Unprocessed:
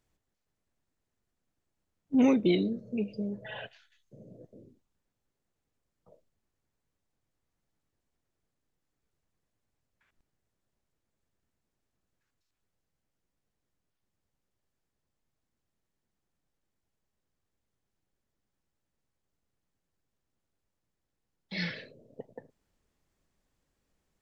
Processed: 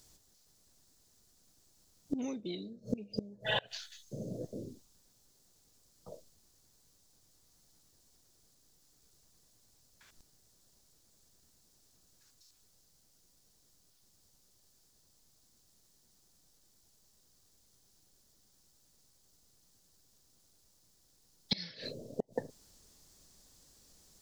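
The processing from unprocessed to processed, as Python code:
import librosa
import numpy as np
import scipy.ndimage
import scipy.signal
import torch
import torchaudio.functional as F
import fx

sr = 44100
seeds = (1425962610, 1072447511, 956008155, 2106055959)

y = fx.gate_flip(x, sr, shuts_db=-30.0, range_db=-26)
y = fx.high_shelf_res(y, sr, hz=3400.0, db=11.5, q=1.5)
y = y * librosa.db_to_amplitude(10.5)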